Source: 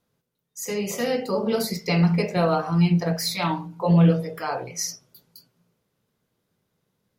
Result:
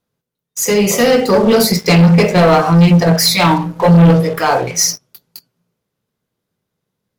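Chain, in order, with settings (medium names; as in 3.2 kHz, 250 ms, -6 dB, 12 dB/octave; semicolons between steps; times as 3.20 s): waveshaping leveller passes 3; trim +4.5 dB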